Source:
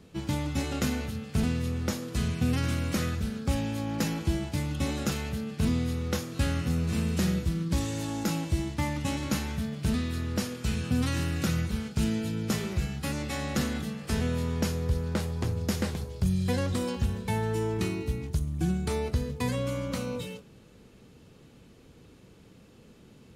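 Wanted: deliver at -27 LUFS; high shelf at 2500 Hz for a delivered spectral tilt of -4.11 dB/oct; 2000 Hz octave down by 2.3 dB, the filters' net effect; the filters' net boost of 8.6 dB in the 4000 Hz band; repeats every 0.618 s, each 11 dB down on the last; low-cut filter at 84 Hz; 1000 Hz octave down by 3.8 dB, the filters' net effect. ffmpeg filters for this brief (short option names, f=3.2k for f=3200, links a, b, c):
-af "highpass=84,equalizer=f=1k:t=o:g=-4.5,equalizer=f=2k:t=o:g=-8,highshelf=f=2.5k:g=8,equalizer=f=4k:t=o:g=6,aecho=1:1:618|1236|1854:0.282|0.0789|0.0221,volume=2dB"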